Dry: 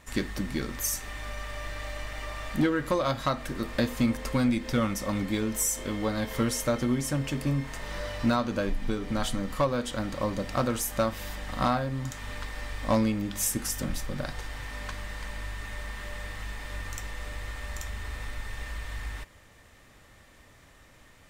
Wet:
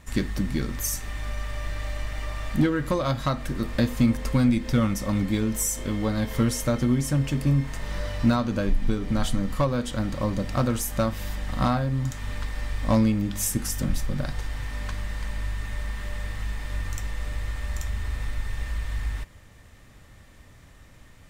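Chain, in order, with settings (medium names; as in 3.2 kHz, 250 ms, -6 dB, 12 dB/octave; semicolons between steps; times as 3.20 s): tone controls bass +8 dB, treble +1 dB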